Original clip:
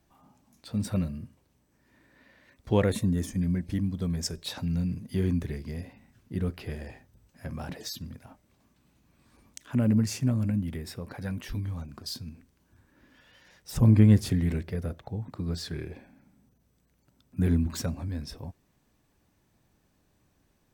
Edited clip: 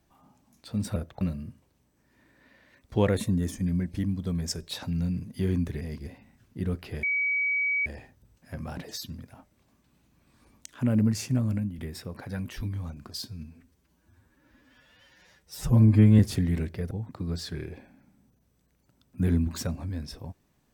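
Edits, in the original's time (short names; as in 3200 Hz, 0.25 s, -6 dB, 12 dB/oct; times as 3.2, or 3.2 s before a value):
5.56–5.82 reverse
6.78 add tone 2270 Hz -23.5 dBFS 0.83 s
10.45–10.7 fade out, to -8.5 dB
12.17–14.13 stretch 1.5×
14.85–15.1 move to 0.96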